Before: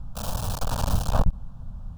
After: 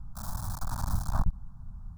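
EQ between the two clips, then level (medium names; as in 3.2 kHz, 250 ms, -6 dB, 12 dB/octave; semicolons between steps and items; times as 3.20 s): static phaser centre 1.2 kHz, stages 4; -5.5 dB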